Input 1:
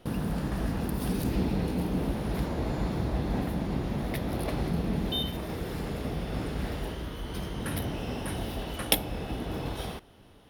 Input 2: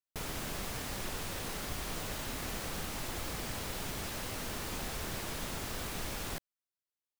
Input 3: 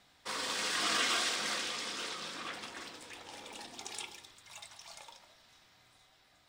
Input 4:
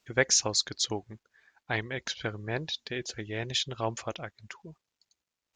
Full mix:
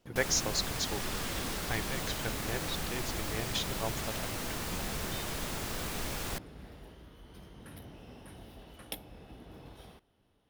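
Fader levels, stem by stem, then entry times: −16.5, +2.0, −13.0, −5.5 decibels; 0.00, 0.00, 0.25, 0.00 seconds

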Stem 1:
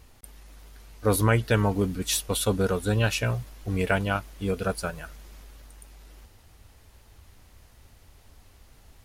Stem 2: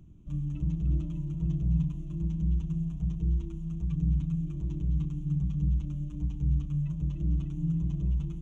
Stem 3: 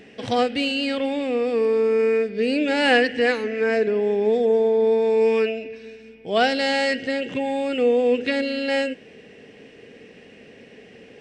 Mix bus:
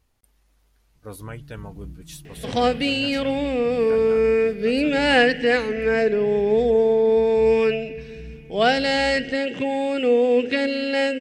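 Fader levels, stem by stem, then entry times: −15.0, −11.5, +1.0 decibels; 0.00, 0.95, 2.25 seconds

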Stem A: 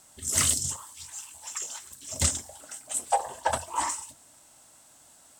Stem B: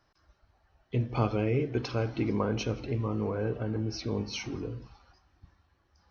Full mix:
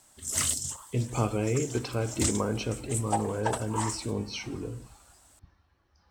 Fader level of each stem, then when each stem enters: −4.0, 0.0 decibels; 0.00, 0.00 seconds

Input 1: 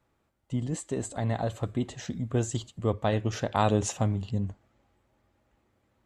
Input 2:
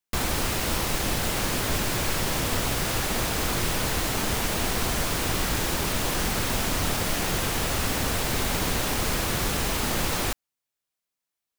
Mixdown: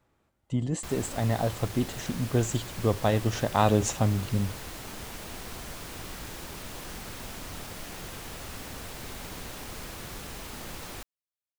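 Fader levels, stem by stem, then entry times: +2.0, −14.0 decibels; 0.00, 0.70 seconds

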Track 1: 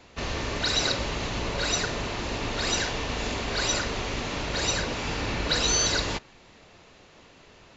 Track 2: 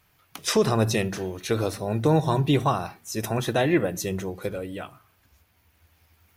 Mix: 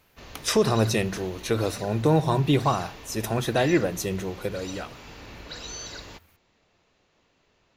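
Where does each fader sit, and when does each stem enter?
−14.0, 0.0 decibels; 0.00, 0.00 seconds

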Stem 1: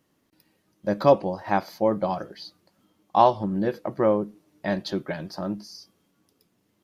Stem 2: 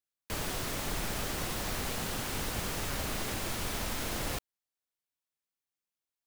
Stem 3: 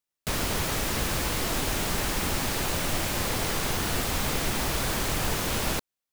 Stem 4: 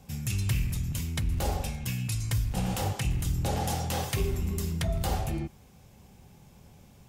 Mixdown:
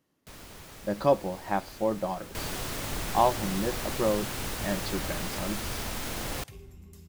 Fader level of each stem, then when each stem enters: −5.5, +0.5, −19.0, −19.0 decibels; 0.00, 2.05, 0.00, 2.35 seconds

